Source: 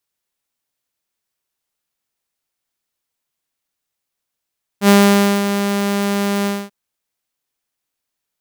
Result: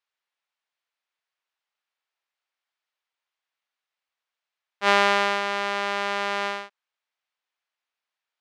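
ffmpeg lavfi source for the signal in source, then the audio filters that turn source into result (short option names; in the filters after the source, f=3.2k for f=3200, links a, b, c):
-f lavfi -i "aevalsrc='0.631*(2*mod(201*t,1)-1)':d=1.888:s=44100,afade=t=in:d=0.076,afade=t=out:st=0.076:d=0.532:silence=0.335,afade=t=out:st=1.65:d=0.238"
-af "highpass=780,lowpass=3.3k"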